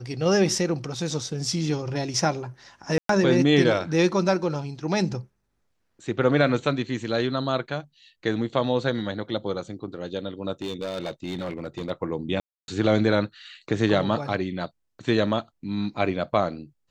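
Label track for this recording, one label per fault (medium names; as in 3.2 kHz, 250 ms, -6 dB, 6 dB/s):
2.980000	3.090000	dropout 113 ms
10.620000	11.910000	clipped -26 dBFS
12.400000	12.680000	dropout 281 ms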